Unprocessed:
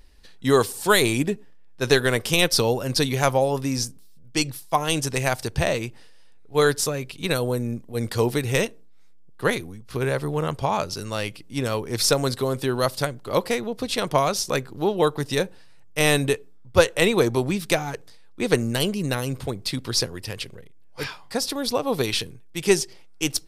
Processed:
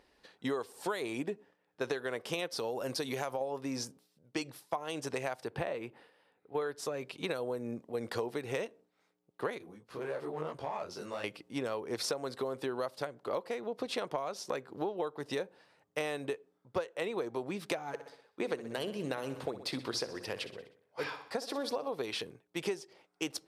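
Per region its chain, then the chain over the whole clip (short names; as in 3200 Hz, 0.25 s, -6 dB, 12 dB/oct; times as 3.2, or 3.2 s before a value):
2.57–3.41 high shelf 6100 Hz +9.5 dB + compressor 3:1, threshold -21 dBFS
5.44–6.75 HPF 56 Hz + bell 6200 Hz -12.5 dB 0.91 oct + notch 630 Hz, Q 15
9.58–11.24 compressor 2.5:1, threshold -29 dBFS + hard clip -25 dBFS + detuned doubles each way 41 cents
17.87–21.94 notches 60/120/180/240/300 Hz + feedback echo 62 ms, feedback 52%, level -14 dB
whole clip: HPF 550 Hz 12 dB/oct; tilt -4 dB/oct; compressor 10:1, threshold -32 dBFS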